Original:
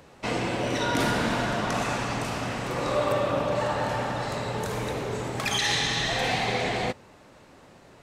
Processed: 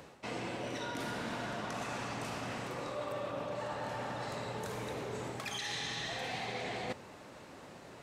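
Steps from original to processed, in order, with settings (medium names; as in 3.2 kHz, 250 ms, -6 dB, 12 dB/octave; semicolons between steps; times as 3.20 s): high-pass 100 Hz 6 dB/octave; reverse; compression 5:1, threshold -39 dBFS, peak gain reduction 16 dB; reverse; trim +1 dB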